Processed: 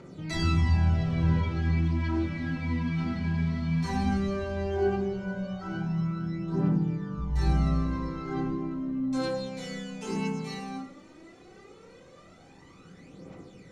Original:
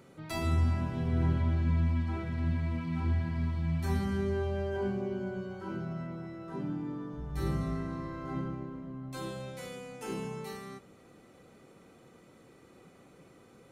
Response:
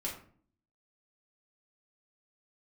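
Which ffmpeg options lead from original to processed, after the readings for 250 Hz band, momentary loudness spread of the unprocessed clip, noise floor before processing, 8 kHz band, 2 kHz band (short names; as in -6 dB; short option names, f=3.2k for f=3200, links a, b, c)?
+6.5 dB, 13 LU, -58 dBFS, +4.0 dB, +6.0 dB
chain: -filter_complex "[0:a]lowpass=f=6k:t=q:w=1.5,asplit=2[a][b];[1:a]atrim=start_sample=2205,asetrate=38808,aresample=44100,adelay=31[c];[b][c]afir=irnorm=-1:irlink=0,volume=-2dB[d];[a][d]amix=inputs=2:normalize=0,aphaser=in_gain=1:out_gain=1:delay=4.9:decay=0.59:speed=0.15:type=triangular"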